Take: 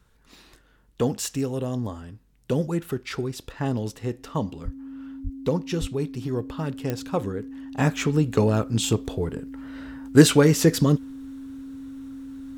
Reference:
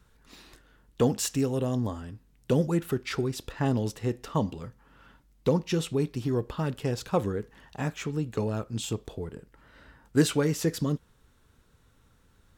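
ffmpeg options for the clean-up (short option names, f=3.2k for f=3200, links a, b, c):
-filter_complex "[0:a]adeclick=t=4,bandreject=f=270:w=30,asplit=3[a][b][c];[a]afade=t=out:st=4.64:d=0.02[d];[b]highpass=f=140:w=0.5412,highpass=f=140:w=1.3066,afade=t=in:st=4.64:d=0.02,afade=t=out:st=4.76:d=0.02[e];[c]afade=t=in:st=4.76:d=0.02[f];[d][e][f]amix=inputs=3:normalize=0,asplit=3[g][h][i];[g]afade=t=out:st=5.23:d=0.02[j];[h]highpass=f=140:w=0.5412,highpass=f=140:w=1.3066,afade=t=in:st=5.23:d=0.02,afade=t=out:st=5.35:d=0.02[k];[i]afade=t=in:st=5.35:d=0.02[l];[j][k][l]amix=inputs=3:normalize=0,asplit=3[m][n][o];[m]afade=t=out:st=5.8:d=0.02[p];[n]highpass=f=140:w=0.5412,highpass=f=140:w=1.3066,afade=t=in:st=5.8:d=0.02,afade=t=out:st=5.92:d=0.02[q];[o]afade=t=in:st=5.92:d=0.02[r];[p][q][r]amix=inputs=3:normalize=0,asetnsamples=n=441:p=0,asendcmd='7.77 volume volume -9dB',volume=0dB"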